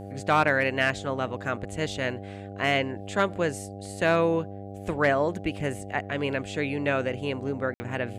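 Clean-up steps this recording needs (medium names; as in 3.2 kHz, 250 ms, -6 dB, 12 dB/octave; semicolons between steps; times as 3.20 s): de-hum 99.2 Hz, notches 8; room tone fill 7.74–7.80 s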